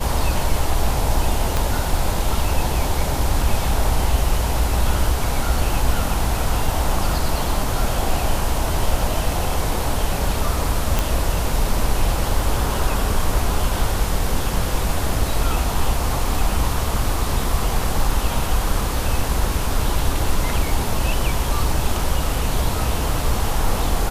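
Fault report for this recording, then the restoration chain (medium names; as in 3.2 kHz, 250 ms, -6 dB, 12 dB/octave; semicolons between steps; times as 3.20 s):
1.57 s: pop
10.99 s: pop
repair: de-click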